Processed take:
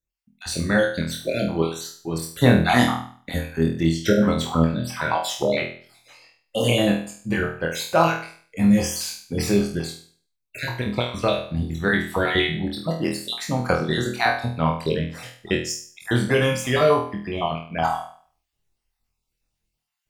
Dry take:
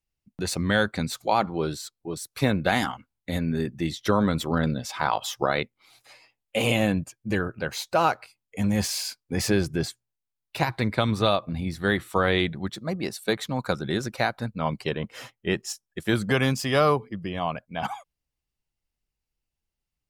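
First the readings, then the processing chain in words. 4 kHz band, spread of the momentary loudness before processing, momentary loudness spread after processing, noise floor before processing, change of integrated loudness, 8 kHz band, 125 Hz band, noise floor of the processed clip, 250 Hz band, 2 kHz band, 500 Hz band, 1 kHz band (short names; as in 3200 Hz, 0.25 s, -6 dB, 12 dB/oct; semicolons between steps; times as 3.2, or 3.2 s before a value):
+3.0 dB, 10 LU, 12 LU, -85 dBFS, +3.5 dB, +3.0 dB, +4.0 dB, -79 dBFS, +4.5 dB, +3.5 dB, +4.0 dB, +2.0 dB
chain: random spectral dropouts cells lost 37%; vocal rider 2 s; flutter echo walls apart 4.2 m, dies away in 0.47 s; gain +1.5 dB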